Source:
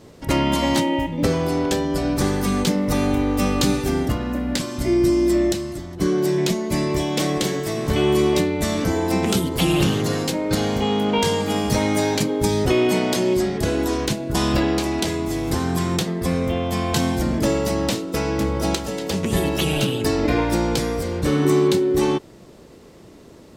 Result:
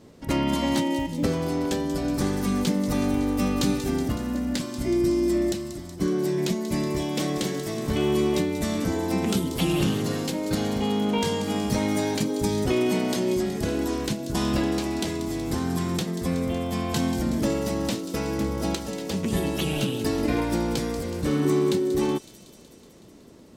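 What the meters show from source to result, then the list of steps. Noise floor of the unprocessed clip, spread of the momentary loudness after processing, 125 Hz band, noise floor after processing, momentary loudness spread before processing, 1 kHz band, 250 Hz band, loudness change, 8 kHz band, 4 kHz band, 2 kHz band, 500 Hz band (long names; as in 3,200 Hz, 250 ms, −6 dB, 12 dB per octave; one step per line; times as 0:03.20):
−45 dBFS, 5 LU, −5.0 dB, −49 dBFS, 5 LU, −6.5 dB, −3.5 dB, −4.5 dB, −5.5 dB, −6.0 dB, −6.5 dB, −5.5 dB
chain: parametric band 230 Hz +5 dB 0.77 octaves
delay with a high-pass on its return 186 ms, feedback 71%, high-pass 4,600 Hz, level −8.5 dB
level −6.5 dB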